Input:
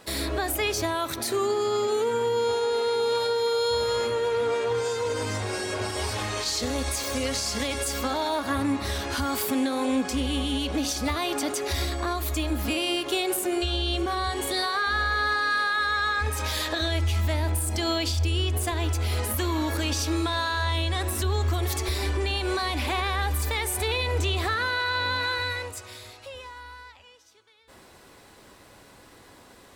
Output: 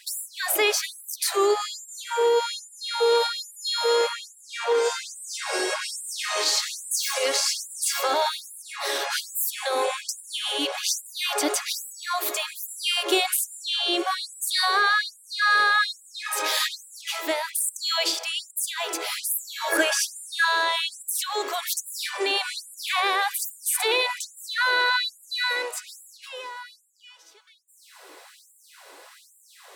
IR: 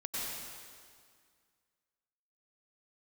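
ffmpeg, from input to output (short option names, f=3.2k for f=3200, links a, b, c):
-filter_complex "[0:a]asettb=1/sr,asplit=3[a][b][c];[a]atrim=end=19.724[d];[b]atrim=start=19.72:end=20.45,asetpts=PTS-STARTPTS,afade=t=in:d=0.004:c=qsin,afade=t=out:st=0.726:d=0.004:c=qsin,equalizer=f=630:t=o:w=0.33:g=8,equalizer=f=1.6k:t=o:w=0.33:g=11,equalizer=f=4k:t=o:w=0.33:g=-8,equalizer=f=10k:t=o:w=0.33:g=7[e];[c]atrim=start=20.446[f];[d][e]acrossfade=d=0.004:c1=hsin:c2=qsin[g];[g][f]acrossfade=d=0.004:c1=qsin:c2=hsin,afftfilt=real='re*gte(b*sr/1024,290*pow(7200/290,0.5+0.5*sin(2*PI*1.2*pts/sr)))':imag='im*gte(b*sr/1024,290*pow(7200/290,0.5+0.5*sin(2*PI*1.2*pts/sr)))':win_size=1024:overlap=0.75,volume=5.5dB"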